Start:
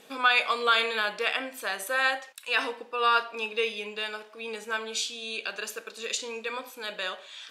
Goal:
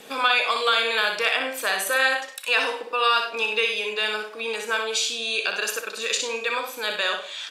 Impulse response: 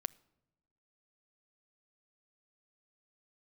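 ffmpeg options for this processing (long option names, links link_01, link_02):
-filter_complex "[0:a]acrossover=split=340|770|2100[link_01][link_02][link_03][link_04];[link_01]acompressor=threshold=-57dB:ratio=4[link_05];[link_02]acompressor=threshold=-39dB:ratio=4[link_06];[link_03]acompressor=threshold=-35dB:ratio=4[link_07];[link_04]acompressor=threshold=-31dB:ratio=4[link_08];[link_05][link_06][link_07][link_08]amix=inputs=4:normalize=0,asplit=2[link_09][link_10];[link_10]aecho=0:1:61|99:0.501|0.224[link_11];[link_09][link_11]amix=inputs=2:normalize=0,volume=8.5dB"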